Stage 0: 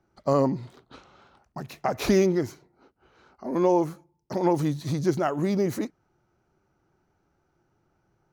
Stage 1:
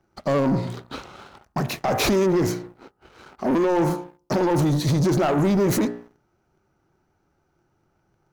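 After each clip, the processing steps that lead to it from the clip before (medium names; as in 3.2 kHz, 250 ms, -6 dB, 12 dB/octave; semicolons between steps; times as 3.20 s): de-hum 59.42 Hz, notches 33; peak limiter -21.5 dBFS, peak gain reduction 11.5 dB; waveshaping leveller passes 2; trim +6.5 dB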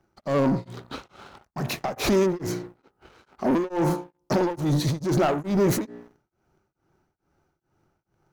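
tremolo of two beating tones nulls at 2.3 Hz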